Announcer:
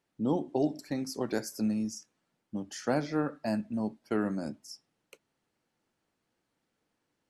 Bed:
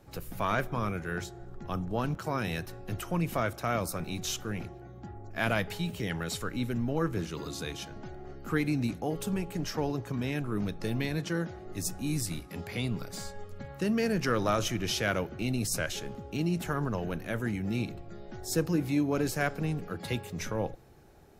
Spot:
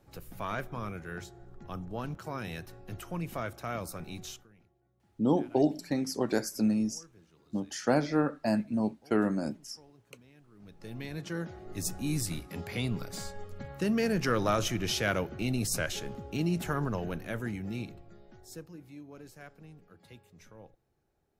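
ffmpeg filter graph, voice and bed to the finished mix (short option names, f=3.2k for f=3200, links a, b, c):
-filter_complex "[0:a]adelay=5000,volume=3dB[a];[1:a]volume=20.5dB,afade=t=out:st=4.18:d=0.3:silence=0.0944061,afade=t=in:st=10.57:d=1.35:silence=0.0473151,afade=t=out:st=16.77:d=1.92:silence=0.1[b];[a][b]amix=inputs=2:normalize=0"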